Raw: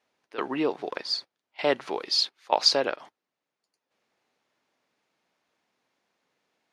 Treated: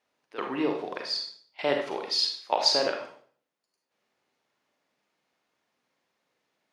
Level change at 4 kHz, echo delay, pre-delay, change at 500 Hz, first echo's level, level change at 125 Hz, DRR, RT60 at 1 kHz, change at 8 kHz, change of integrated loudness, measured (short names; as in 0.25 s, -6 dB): -1.0 dB, none, 34 ms, -1.0 dB, none, 0.0 dB, 2.5 dB, 0.45 s, -1.0 dB, -1.5 dB